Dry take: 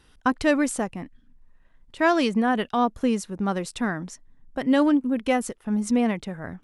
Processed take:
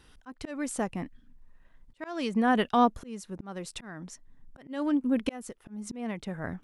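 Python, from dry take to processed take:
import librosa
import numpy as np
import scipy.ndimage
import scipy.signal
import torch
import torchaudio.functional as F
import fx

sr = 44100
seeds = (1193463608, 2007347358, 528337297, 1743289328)

y = fx.auto_swell(x, sr, attack_ms=539.0)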